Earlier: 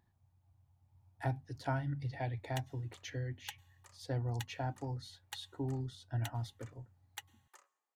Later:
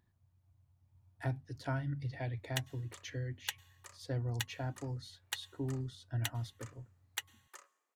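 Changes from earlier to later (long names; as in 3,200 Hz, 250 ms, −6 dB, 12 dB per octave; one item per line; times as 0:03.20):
background +8.0 dB
master: add parametric band 820 Hz −9 dB 0.33 octaves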